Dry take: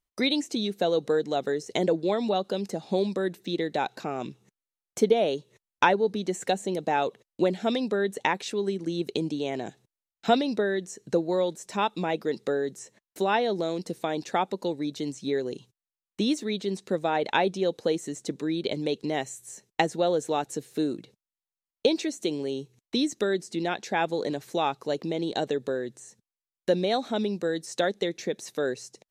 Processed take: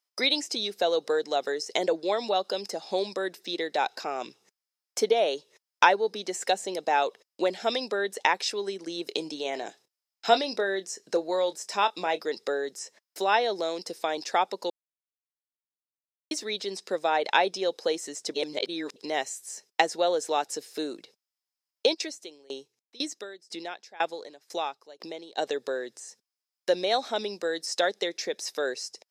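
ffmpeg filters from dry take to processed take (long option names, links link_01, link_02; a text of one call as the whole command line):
ffmpeg -i in.wav -filter_complex "[0:a]asettb=1/sr,asplit=3[link_01][link_02][link_03];[link_01]atrim=end=9.034[link_04];[link_02]atrim=start=9.03:end=12.22,asetpts=PTS-STARTPTS,afade=type=in:duration=0.004:curve=qsin,afade=type=out:start_time=3.186:duration=0.004:curve=qsin,asplit=2[link_05][link_06];[link_06]adelay=26,volume=-13dB[link_07];[link_05][link_07]amix=inputs=2:normalize=0,atrim=end_sample=140679[link_08];[link_03]atrim=start=12.216[link_09];[link_04][link_08]acrossfade=duration=0.004:curve1=hsin:curve2=qsin[link_10];[link_10][link_09]acrossfade=duration=0.004:curve1=qsin:curve2=hsin,asplit=3[link_11][link_12][link_13];[link_11]afade=type=out:start_time=21.93:duration=0.02[link_14];[link_12]aeval=exprs='val(0)*pow(10,-24*if(lt(mod(2*n/s,1),2*abs(2)/1000),1-mod(2*n/s,1)/(2*abs(2)/1000),(mod(2*n/s,1)-2*abs(2)/1000)/(1-2*abs(2)/1000))/20)':channel_layout=same,afade=type=in:start_time=21.93:duration=0.02,afade=type=out:start_time=25.37:duration=0.02[link_15];[link_13]afade=type=in:start_time=25.37:duration=0.02[link_16];[link_14][link_15][link_16]amix=inputs=3:normalize=0,asplit=5[link_17][link_18][link_19][link_20][link_21];[link_17]atrim=end=14.7,asetpts=PTS-STARTPTS,afade=type=out:start_time=14.696:duration=0.004:curve=hsin[link_22];[link_18]atrim=start=14.7:end=16.31,asetpts=PTS-STARTPTS,volume=0[link_23];[link_19]atrim=start=16.31:end=18.342,asetpts=PTS-STARTPTS,afade=type=in:duration=0.004:curve=hsin[link_24];[link_20]atrim=start=18.338:end=18.962,asetpts=PTS-STARTPTS,areverse[link_25];[link_21]atrim=start=18.958[link_26];[link_22][link_23][link_24]concat=n=3:v=0:a=1[link_27];[link_27][link_25]acrossfade=duration=0.004:curve1=hsin:curve2=hsin[link_28];[link_28][link_26]acrossfade=duration=0.004:curve1=hsin:curve2=hsin,highpass=520,equalizer=frequency=5100:width=6.2:gain=13,volume=2.5dB" out.wav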